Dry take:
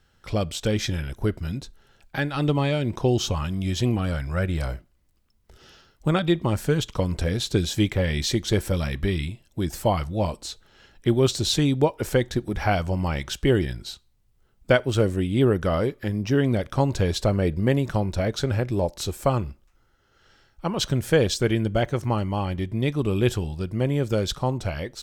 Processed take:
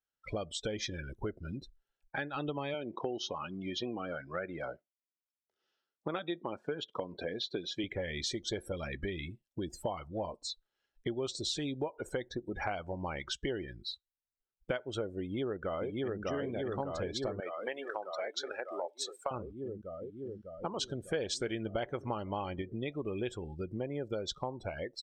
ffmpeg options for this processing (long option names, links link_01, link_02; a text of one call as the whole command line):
ffmpeg -i in.wav -filter_complex "[0:a]asettb=1/sr,asplit=3[link_01][link_02][link_03];[link_01]atrim=end=2.744[link_04];[link_02]atrim=start=2.74:end=7.84,asetpts=PTS-STARTPTS,afade=type=in:duration=0.004:curve=qsin,afade=type=out:start_time=5.096:duration=0.004:curve=qsin,highpass=200,lowpass=5400[link_05];[link_03]atrim=start=7.836[link_06];[link_04][link_05]acrossfade=duration=0.004:curve1=hsin:curve2=qsin[link_07];[link_07][link_06]acrossfade=duration=0.004:curve1=qsin:curve2=hsin,asettb=1/sr,asplit=3[link_08][link_09][link_10];[link_08]atrim=end=11.564[link_11];[link_09]atrim=start=11.56:end=12.08,asetpts=PTS-STARTPTS,afade=type=in:duration=0.004:curve=qsin,afade=type=out:start_time=0.516:duration=0.004:curve=qsin,acompressor=mode=upward:threshold=-25dB:ratio=2.5:attack=3.2:release=140:knee=2.83:detection=peak[link_12];[link_10]atrim=start=12.076[link_13];[link_11][link_12]acrossfade=duration=0.004:curve1=hsin:curve2=qsin[link_14];[link_14][link_13]acrossfade=duration=0.004:curve1=qsin:curve2=hsin,asplit=2[link_15][link_16];[link_16]afade=type=in:start_time=15.21:duration=0.01,afade=type=out:start_time=16.21:duration=0.01,aecho=0:1:600|1200|1800|2400|3000|3600|4200|4800|5400|6000|6600|7200:0.841395|0.631046|0.473285|0.354964|0.266223|0.199667|0.14975|0.112313|0.0842345|0.0631759|0.0473819|0.0355364[link_17];[link_15][link_17]amix=inputs=2:normalize=0,asettb=1/sr,asplit=3[link_18][link_19][link_20];[link_18]atrim=end=17.404[link_21];[link_19]atrim=start=17.4:end=19.31,asetpts=PTS-STARTPTS,afade=type=in:duration=0.004:curve=qsin,afade=type=out:start_time=1.906:duration=0.004:curve=qsin,highpass=680[link_22];[link_20]atrim=start=19.306[link_23];[link_21][link_22]acrossfade=duration=0.004:curve1=hsin:curve2=qsin[link_24];[link_24][link_23]acrossfade=duration=0.004:curve1=qsin:curve2=hsin,asettb=1/sr,asplit=3[link_25][link_26][link_27];[link_25]atrim=end=21.144[link_28];[link_26]atrim=start=21.14:end=22.62,asetpts=PTS-STARTPTS,afade=type=in:duration=0.004:curve=qsin,afade=type=out:start_time=1.476:duration=0.004:curve=qsin,acontrast=32[link_29];[link_27]atrim=start=22.616[link_30];[link_28][link_29]acrossfade=duration=0.004:curve1=hsin:curve2=qsin[link_31];[link_31][link_30]acrossfade=duration=0.004:curve1=qsin:curve2=hsin,afftdn=noise_reduction=30:noise_floor=-34,bass=frequency=250:gain=-12,treble=frequency=4000:gain=1,acompressor=threshold=-35dB:ratio=4" out.wav